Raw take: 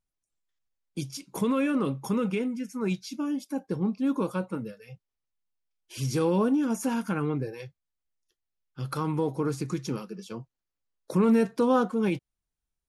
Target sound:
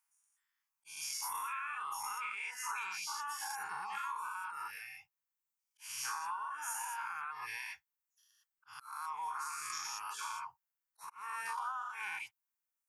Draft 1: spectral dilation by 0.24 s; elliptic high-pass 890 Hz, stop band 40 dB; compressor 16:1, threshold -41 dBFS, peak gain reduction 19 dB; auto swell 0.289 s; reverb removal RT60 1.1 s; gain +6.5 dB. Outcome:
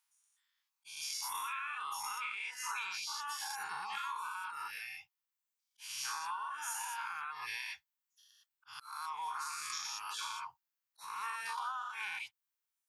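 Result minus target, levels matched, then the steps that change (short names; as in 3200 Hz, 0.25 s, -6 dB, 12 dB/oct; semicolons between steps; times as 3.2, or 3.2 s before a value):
4000 Hz band +4.0 dB
add after elliptic high-pass: bell 3800 Hz -13 dB 0.76 oct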